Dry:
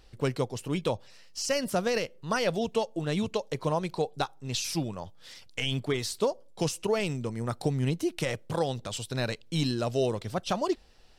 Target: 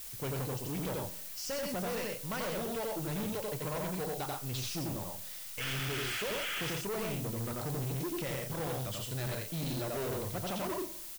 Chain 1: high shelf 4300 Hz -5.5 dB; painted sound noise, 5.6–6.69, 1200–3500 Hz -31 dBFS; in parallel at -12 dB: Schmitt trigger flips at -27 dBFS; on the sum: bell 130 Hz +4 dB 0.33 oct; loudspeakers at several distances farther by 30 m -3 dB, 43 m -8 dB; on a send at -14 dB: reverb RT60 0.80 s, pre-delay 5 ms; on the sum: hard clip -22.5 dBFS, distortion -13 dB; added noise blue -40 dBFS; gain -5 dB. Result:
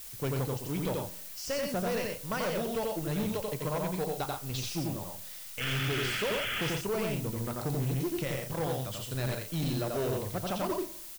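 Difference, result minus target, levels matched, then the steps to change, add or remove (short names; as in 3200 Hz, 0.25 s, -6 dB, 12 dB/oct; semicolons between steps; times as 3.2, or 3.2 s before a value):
Schmitt trigger: distortion -28 dB; hard clip: distortion -6 dB
change: Schmitt trigger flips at -18 dBFS; change: hard clip -29 dBFS, distortion -7 dB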